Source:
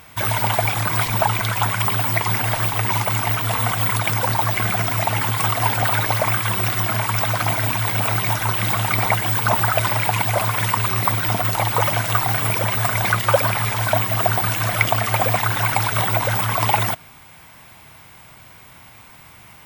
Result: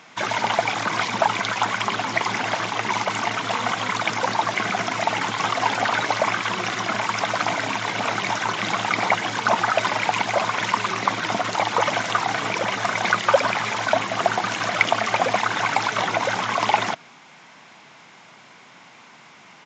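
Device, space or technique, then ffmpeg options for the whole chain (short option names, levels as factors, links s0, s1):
Bluetooth headset: -af "highpass=f=180:w=0.5412,highpass=f=180:w=1.3066,aresample=16000,aresample=44100" -ar 16000 -c:a sbc -b:a 64k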